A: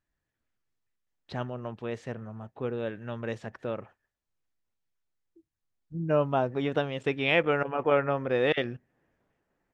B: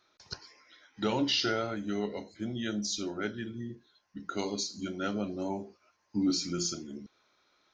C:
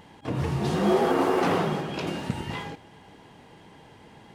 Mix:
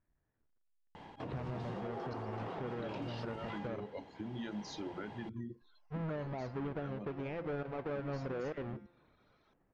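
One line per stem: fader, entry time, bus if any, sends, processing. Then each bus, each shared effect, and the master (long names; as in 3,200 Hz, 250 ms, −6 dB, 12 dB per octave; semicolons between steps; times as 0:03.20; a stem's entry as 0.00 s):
−1.0 dB, 0.00 s, bus A, no send, each half-wave held at its own peak; low-pass filter 2,200 Hz 12 dB per octave; hum removal 174.7 Hz, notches 31
+2.5 dB, 1.80 s, bus A, no send, reverb reduction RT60 0.9 s; downward compressor, threshold −35 dBFS, peak gain reduction 10 dB
−3.0 dB, 0.95 s, no bus, no send, parametric band 770 Hz +5 dB 1.3 octaves; downward compressor 6 to 1, threshold −28 dBFS, peak gain reduction 12 dB; automatic ducking −8 dB, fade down 0.25 s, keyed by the first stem
bus A: 0.0 dB, high-shelf EQ 2,600 Hz −10 dB; downward compressor 2.5 to 1, threshold −40 dBFS, peak gain reduction 14.5 dB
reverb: not used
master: low-pass filter 4,800 Hz 12 dB per octave; brickwall limiter −32.5 dBFS, peak gain reduction 8 dB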